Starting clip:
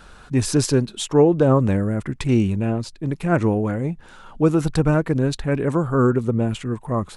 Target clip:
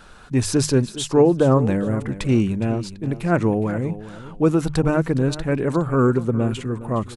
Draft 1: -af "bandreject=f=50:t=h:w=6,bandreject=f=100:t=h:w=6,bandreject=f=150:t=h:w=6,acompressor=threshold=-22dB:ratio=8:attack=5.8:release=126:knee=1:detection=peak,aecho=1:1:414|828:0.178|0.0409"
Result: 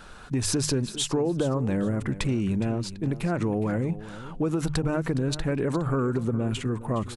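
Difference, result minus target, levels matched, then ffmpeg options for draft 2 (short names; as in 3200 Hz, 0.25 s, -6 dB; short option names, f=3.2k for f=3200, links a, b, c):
compressor: peak gain reduction +12.5 dB
-af "bandreject=f=50:t=h:w=6,bandreject=f=100:t=h:w=6,bandreject=f=150:t=h:w=6,aecho=1:1:414|828:0.178|0.0409"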